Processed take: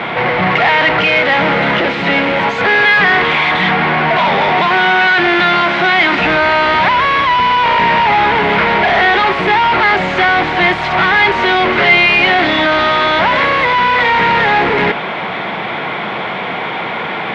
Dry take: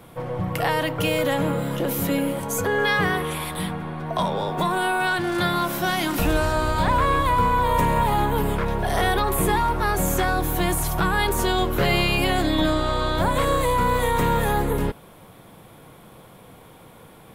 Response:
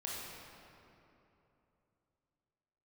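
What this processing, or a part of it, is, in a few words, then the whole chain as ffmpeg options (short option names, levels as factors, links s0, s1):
overdrive pedal into a guitar cabinet: -filter_complex "[0:a]asplit=2[s0][s1];[s1]highpass=f=720:p=1,volume=70.8,asoftclip=type=tanh:threshold=0.376[s2];[s0][s2]amix=inputs=2:normalize=0,lowpass=f=2600:p=1,volume=0.501,highpass=92,equalizer=f=98:t=q:w=4:g=-7,equalizer=f=140:t=q:w=4:g=-4,equalizer=f=290:t=q:w=4:g=-6,equalizer=f=510:t=q:w=4:g=-8,equalizer=f=1100:t=q:w=4:g=-4,equalizer=f=2100:t=q:w=4:g=7,lowpass=f=3800:w=0.5412,lowpass=f=3800:w=1.3066,volume=1.78"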